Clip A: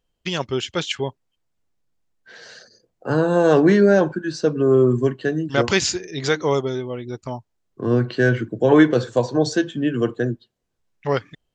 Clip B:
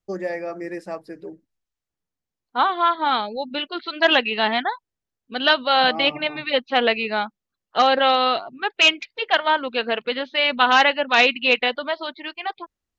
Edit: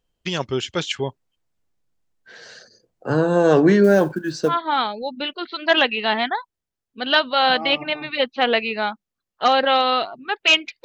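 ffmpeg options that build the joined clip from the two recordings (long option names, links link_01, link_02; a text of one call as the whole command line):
ffmpeg -i cue0.wav -i cue1.wav -filter_complex "[0:a]asettb=1/sr,asplit=3[link_01][link_02][link_03];[link_01]atrim=end=3.844[link_04];[link_02]atrim=start=3.84:end=4.58,asetpts=PTS-STARTPTS,afade=type=in:duration=0.004:curve=qsin,afade=type=out:start_time=0.736:duration=0.004:curve=qsin,acrusher=bits=8:mode=log:mix=0:aa=0.000001[link_05];[link_03]atrim=start=4.576[link_06];[link_04][link_05]acrossfade=duration=0.004:curve1=hsin:curve2=qsin[link_07];[link_07][link_06]acrossfade=duration=0.004:curve1=qsin:curve2=hsin,apad=whole_dur=10.84,atrim=end=10.84,atrim=end=4.58,asetpts=PTS-STARTPTS[link_08];[1:a]atrim=start=2.78:end=9.18,asetpts=PTS-STARTPTS[link_09];[link_08][link_09]acrossfade=duration=0.14:curve1=tri:curve2=tri" out.wav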